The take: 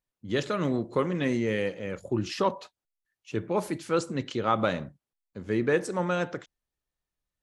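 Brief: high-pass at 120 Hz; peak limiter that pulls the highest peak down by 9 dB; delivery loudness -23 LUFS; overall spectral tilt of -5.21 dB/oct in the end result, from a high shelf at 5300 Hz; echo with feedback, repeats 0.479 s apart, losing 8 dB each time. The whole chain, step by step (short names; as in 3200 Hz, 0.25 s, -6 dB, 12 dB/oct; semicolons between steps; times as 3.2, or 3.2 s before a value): HPF 120 Hz; high shelf 5300 Hz -4.5 dB; limiter -19.5 dBFS; feedback echo 0.479 s, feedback 40%, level -8 dB; gain +9 dB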